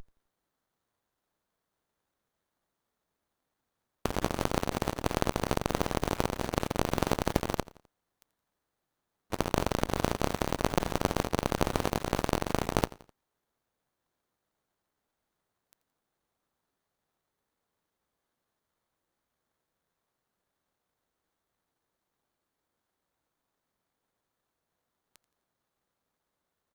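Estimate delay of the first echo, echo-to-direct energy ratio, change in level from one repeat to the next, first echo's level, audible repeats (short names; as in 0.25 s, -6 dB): 85 ms, -19.0 dB, -7.0 dB, -20.0 dB, 3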